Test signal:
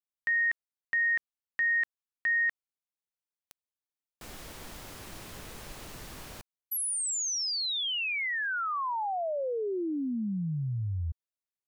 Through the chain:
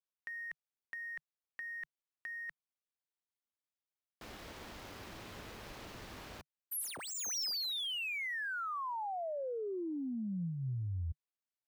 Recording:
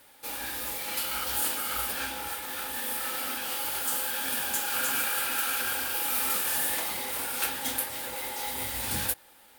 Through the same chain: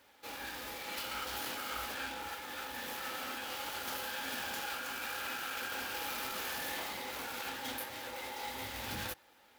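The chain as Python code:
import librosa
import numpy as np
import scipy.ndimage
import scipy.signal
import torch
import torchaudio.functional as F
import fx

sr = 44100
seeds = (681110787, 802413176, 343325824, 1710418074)

y = scipy.ndimage.median_filter(x, 5, mode='constant')
y = fx.highpass(y, sr, hz=59.0, slope=6)
y = fx.peak_eq(y, sr, hz=150.0, db=-6.0, octaves=0.27)
y = fx.over_compress(y, sr, threshold_db=-34.0, ratio=-1.0)
y = y * 10.0 ** (-5.0 / 20.0)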